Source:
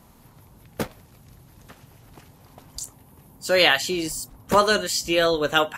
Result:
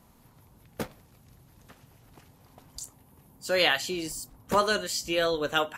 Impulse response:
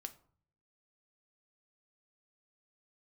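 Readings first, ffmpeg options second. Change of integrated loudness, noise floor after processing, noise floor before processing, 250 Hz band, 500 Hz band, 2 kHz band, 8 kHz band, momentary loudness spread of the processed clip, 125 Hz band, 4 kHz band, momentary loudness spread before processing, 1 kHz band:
-6.0 dB, -59 dBFS, -53 dBFS, -6.5 dB, -6.0 dB, -6.0 dB, -6.0 dB, 18 LU, -6.5 dB, -6.0 dB, 18 LU, -6.0 dB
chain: -filter_complex "[0:a]asplit=2[s0][s1];[1:a]atrim=start_sample=2205[s2];[s1][s2]afir=irnorm=-1:irlink=0,volume=0.531[s3];[s0][s3]amix=inputs=2:normalize=0,volume=0.376"

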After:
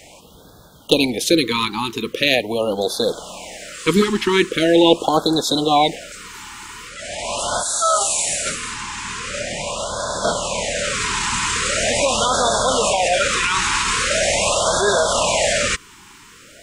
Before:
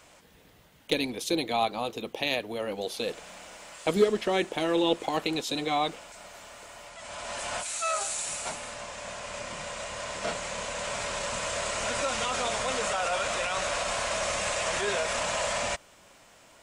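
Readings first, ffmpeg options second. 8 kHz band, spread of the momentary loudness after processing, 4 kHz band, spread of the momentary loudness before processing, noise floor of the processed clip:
+12.5 dB, 11 LU, +12.0 dB, 12 LU, -45 dBFS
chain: -af "acontrast=86,afftfilt=real='re*(1-between(b*sr/1024,570*pow(2400/570,0.5+0.5*sin(2*PI*0.42*pts/sr))/1.41,570*pow(2400/570,0.5+0.5*sin(2*PI*0.42*pts/sr))*1.41))':imag='im*(1-between(b*sr/1024,570*pow(2400/570,0.5+0.5*sin(2*PI*0.42*pts/sr))/1.41,570*pow(2400/570,0.5+0.5*sin(2*PI*0.42*pts/sr))*1.41))':win_size=1024:overlap=0.75,volume=1.88"

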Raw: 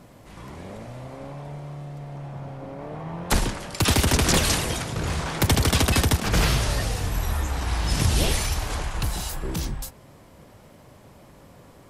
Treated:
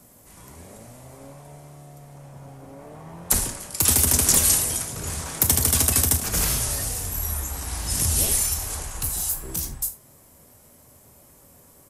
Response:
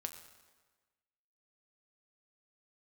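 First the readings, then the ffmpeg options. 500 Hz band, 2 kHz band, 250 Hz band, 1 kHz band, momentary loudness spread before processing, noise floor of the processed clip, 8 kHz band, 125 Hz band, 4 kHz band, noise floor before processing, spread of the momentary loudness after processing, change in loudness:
-6.5 dB, -6.5 dB, -6.5 dB, -6.5 dB, 18 LU, -53 dBFS, +8.5 dB, -5.5 dB, -3.0 dB, -50 dBFS, 13 LU, +3.0 dB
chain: -filter_complex "[0:a]acrossover=split=290|690|5700[s0][s1][s2][s3];[s3]crystalizer=i=6:c=0[s4];[s0][s1][s2][s4]amix=inputs=4:normalize=0[s5];[1:a]atrim=start_sample=2205,atrim=end_sample=3969[s6];[s5][s6]afir=irnorm=-1:irlink=0,aresample=32000,aresample=44100,volume=0.631"

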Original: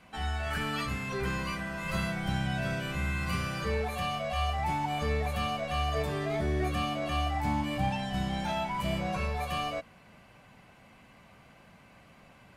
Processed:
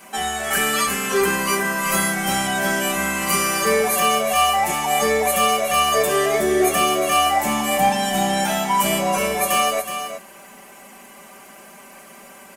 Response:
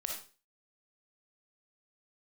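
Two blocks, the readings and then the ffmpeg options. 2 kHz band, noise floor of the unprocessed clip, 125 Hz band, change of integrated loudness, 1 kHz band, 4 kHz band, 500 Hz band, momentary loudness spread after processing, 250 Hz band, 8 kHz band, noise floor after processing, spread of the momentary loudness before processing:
+13.5 dB, -57 dBFS, -1.5 dB, +13.0 dB, +14.0 dB, +14.5 dB, +14.5 dB, 4 LU, +9.0 dB, +26.0 dB, -44 dBFS, 3 LU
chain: -filter_complex "[0:a]equalizer=f=1000:w=0.56:g=2,aexciter=amount=3.9:drive=7.9:freq=5900,lowshelf=f=190:t=q:w=1.5:g=-14,aecho=1:1:5.1:0.7,asplit=2[s0][s1];[s1]aecho=0:1:371:0.355[s2];[s0][s2]amix=inputs=2:normalize=0,volume=2.82"

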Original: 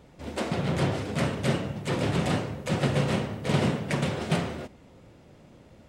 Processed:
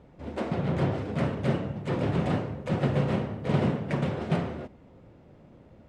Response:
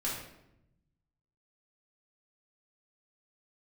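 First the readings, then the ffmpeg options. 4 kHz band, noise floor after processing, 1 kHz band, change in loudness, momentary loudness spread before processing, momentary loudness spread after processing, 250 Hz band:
-9.0 dB, -55 dBFS, -2.0 dB, -1.0 dB, 6 LU, 7 LU, 0.0 dB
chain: -af "lowpass=f=1300:p=1"

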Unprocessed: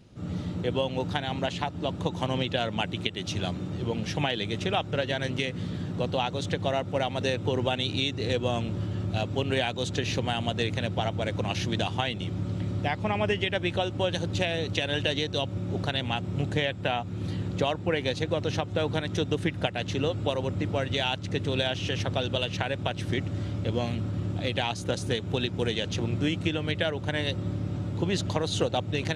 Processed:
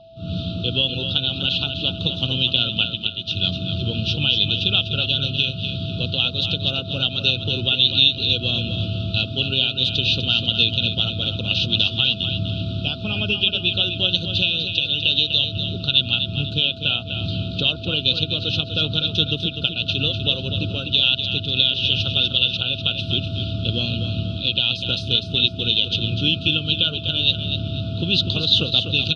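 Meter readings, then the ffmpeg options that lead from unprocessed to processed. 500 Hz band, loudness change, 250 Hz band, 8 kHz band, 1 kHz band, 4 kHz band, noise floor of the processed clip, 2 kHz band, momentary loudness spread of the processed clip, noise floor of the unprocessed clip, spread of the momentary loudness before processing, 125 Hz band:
-3.0 dB, +9.5 dB, +2.5 dB, no reading, -7.5 dB, +16.0 dB, -31 dBFS, +7.0 dB, 7 LU, -37 dBFS, 4 LU, +4.5 dB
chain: -filter_complex "[0:a]firequalizer=gain_entry='entry(130,0);entry(220,-4);entry(970,-24);entry(1400,-3);entry(3600,13);entry(7100,-21)':delay=0.05:min_phase=1,aeval=exprs='val(0)+0.00708*sin(2*PI*660*n/s)':c=same,dynaudnorm=f=150:g=3:m=2.82,asuperstop=centerf=1900:order=20:qfactor=1.9,asplit=2[s0][s1];[s1]aecho=0:1:248|496|744|992:0.398|0.139|0.0488|0.0171[s2];[s0][s2]amix=inputs=2:normalize=0,volume=0.891"

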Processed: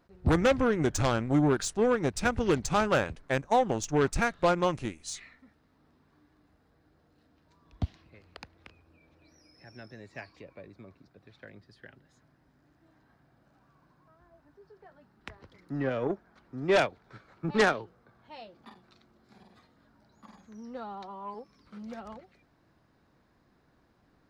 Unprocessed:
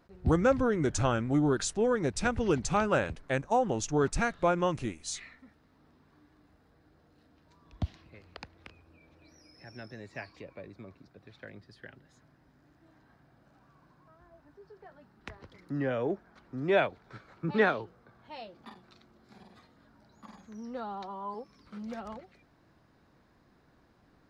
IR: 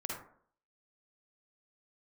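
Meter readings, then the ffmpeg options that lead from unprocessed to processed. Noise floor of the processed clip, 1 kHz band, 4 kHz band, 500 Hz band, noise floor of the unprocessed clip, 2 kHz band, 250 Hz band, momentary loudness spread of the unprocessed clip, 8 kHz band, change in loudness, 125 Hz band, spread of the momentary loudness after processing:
-68 dBFS, +2.0 dB, +3.5 dB, +1.5 dB, -65 dBFS, +2.0 dB, +1.0 dB, 21 LU, +0.5 dB, +2.0 dB, +1.0 dB, 20 LU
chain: -af "aeval=exprs='0.224*(cos(1*acos(clip(val(0)/0.224,-1,1)))-cos(1*PI/2))+0.112*(cos(5*acos(clip(val(0)/0.224,-1,1)))-cos(5*PI/2))+0.0794*(cos(7*acos(clip(val(0)/0.224,-1,1)))-cos(7*PI/2))':c=same,volume=0.75"

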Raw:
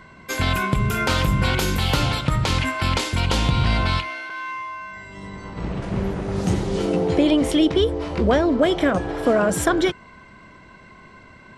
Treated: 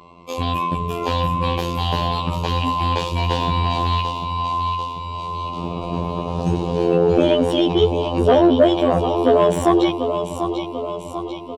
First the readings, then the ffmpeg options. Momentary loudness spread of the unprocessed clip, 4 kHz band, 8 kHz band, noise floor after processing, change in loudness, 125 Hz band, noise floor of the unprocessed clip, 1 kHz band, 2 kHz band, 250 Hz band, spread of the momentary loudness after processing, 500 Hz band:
12 LU, 0.0 dB, no reading, -32 dBFS, +1.5 dB, 0.0 dB, -47 dBFS, +6.0 dB, -7.0 dB, +1.0 dB, 12 LU, +5.0 dB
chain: -af "asuperstop=centerf=1700:order=8:qfactor=1.5,afftfilt=real='hypot(re,im)*cos(PI*b)':imag='0':win_size=2048:overlap=0.75,dynaudnorm=f=670:g=7:m=2.37,aecho=1:1:742|1484|2226|2968|3710|4452|5194:0.355|0.199|0.111|0.0623|0.0349|0.0195|0.0109,adynamicequalizer=threshold=0.00501:dfrequency=110:dqfactor=6.6:tfrequency=110:tqfactor=6.6:attack=5:release=100:ratio=0.375:range=2.5:mode=cutabove:tftype=bell,acontrast=85,bass=f=250:g=-7,treble=f=4000:g=-13"

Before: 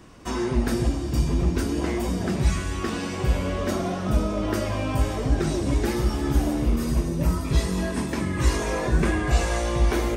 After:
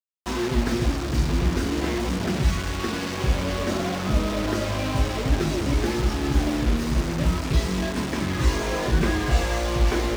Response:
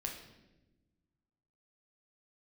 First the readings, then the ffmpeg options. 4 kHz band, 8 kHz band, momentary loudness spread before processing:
+4.5 dB, +0.5 dB, 4 LU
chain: -filter_complex "[0:a]acrusher=bits=4:mix=0:aa=0.000001,acrossover=split=6800[s0][s1];[s1]acompressor=threshold=0.00447:ratio=4:attack=1:release=60[s2];[s0][s2]amix=inputs=2:normalize=0"

